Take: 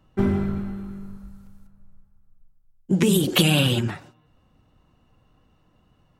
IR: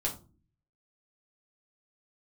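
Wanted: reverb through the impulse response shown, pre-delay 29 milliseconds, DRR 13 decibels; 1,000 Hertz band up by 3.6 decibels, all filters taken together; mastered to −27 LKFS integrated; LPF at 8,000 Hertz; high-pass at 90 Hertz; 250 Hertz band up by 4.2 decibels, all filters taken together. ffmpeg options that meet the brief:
-filter_complex "[0:a]highpass=90,lowpass=8000,equalizer=frequency=250:width_type=o:gain=6,equalizer=frequency=1000:width_type=o:gain=4.5,asplit=2[link_01][link_02];[1:a]atrim=start_sample=2205,adelay=29[link_03];[link_02][link_03]afir=irnorm=-1:irlink=0,volume=-17dB[link_04];[link_01][link_04]amix=inputs=2:normalize=0,volume=-8dB"

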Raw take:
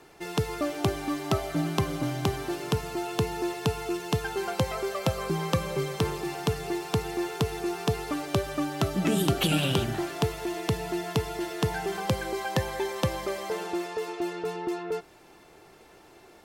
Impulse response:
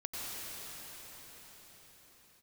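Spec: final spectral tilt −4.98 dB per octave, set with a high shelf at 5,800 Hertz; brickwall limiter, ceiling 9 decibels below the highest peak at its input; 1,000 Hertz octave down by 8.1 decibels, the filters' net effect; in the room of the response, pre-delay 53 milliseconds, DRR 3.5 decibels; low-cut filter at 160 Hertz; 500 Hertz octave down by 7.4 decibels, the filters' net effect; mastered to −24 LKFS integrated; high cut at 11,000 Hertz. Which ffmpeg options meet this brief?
-filter_complex "[0:a]highpass=160,lowpass=11000,equalizer=frequency=500:width_type=o:gain=-8.5,equalizer=frequency=1000:width_type=o:gain=-7.5,highshelf=frequency=5800:gain=-6,alimiter=limit=-22dB:level=0:latency=1,asplit=2[link_01][link_02];[1:a]atrim=start_sample=2205,adelay=53[link_03];[link_02][link_03]afir=irnorm=-1:irlink=0,volume=-7dB[link_04];[link_01][link_04]amix=inputs=2:normalize=0,volume=11dB"

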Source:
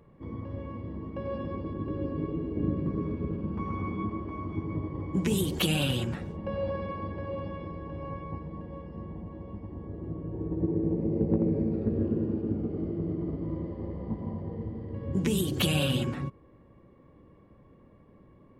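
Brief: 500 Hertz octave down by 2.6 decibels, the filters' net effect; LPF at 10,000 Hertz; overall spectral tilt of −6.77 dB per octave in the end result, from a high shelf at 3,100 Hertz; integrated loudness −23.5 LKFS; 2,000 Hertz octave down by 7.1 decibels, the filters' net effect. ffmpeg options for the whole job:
ffmpeg -i in.wav -af "lowpass=10000,equalizer=frequency=500:width_type=o:gain=-3,equalizer=frequency=2000:width_type=o:gain=-6.5,highshelf=frequency=3100:gain=-7,volume=10dB" out.wav

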